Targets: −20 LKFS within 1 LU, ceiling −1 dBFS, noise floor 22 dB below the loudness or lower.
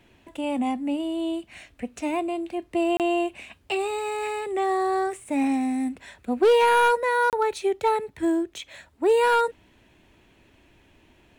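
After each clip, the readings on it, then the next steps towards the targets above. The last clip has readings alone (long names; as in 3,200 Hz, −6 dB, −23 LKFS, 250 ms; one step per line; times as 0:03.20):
share of clipped samples 0.5%; peaks flattened at −13.5 dBFS; number of dropouts 2; longest dropout 28 ms; integrated loudness −24.5 LKFS; sample peak −13.5 dBFS; target loudness −20.0 LKFS
→ clipped peaks rebuilt −13.5 dBFS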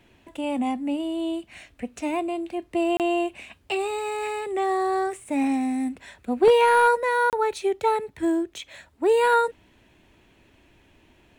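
share of clipped samples 0.0%; number of dropouts 2; longest dropout 28 ms
→ repair the gap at 0:02.97/0:07.30, 28 ms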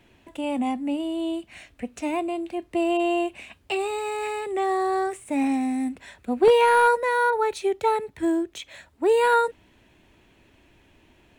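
number of dropouts 0; integrated loudness −24.0 LKFS; sample peak −6.5 dBFS; target loudness −20.0 LKFS
→ level +4 dB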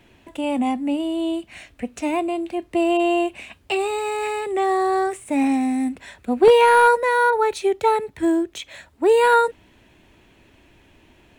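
integrated loudness −20.0 LKFS; sample peak −2.5 dBFS; background noise floor −55 dBFS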